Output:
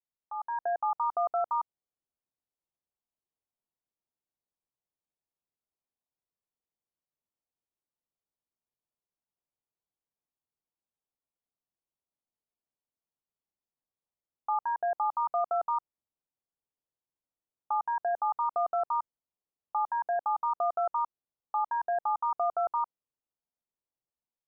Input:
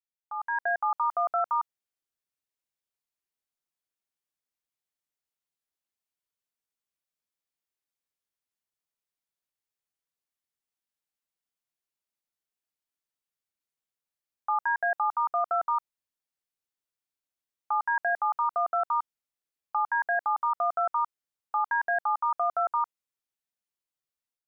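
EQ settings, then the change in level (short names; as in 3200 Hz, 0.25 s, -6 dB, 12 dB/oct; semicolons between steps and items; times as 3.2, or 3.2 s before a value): LPF 1100 Hz 24 dB/oct; air absorption 430 m; +2.0 dB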